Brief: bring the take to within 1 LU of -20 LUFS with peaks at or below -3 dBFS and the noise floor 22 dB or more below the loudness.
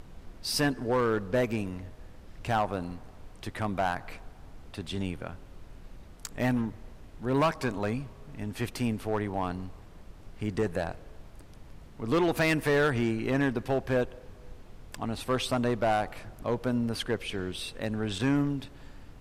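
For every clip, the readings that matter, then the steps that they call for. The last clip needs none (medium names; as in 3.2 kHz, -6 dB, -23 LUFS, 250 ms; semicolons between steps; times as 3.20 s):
clipped samples 1.1%; clipping level -20.0 dBFS; noise floor -50 dBFS; noise floor target -53 dBFS; loudness -30.5 LUFS; peak level -20.0 dBFS; loudness target -20.0 LUFS
-> clip repair -20 dBFS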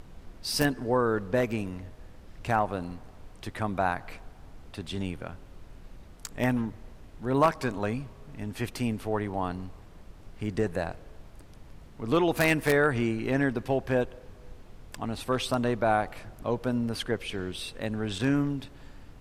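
clipped samples 0.0%; noise floor -50 dBFS; noise floor target -52 dBFS
-> noise print and reduce 6 dB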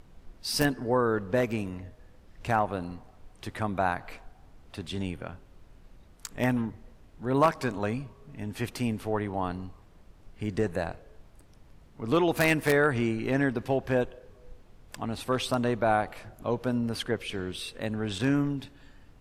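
noise floor -55 dBFS; loudness -29.5 LUFS; peak level -11.0 dBFS; loudness target -20.0 LUFS
-> trim +9.5 dB; peak limiter -3 dBFS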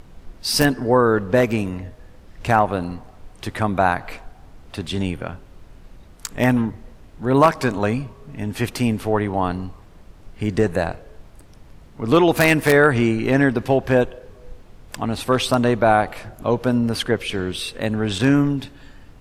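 loudness -20.0 LUFS; peak level -3.0 dBFS; noise floor -46 dBFS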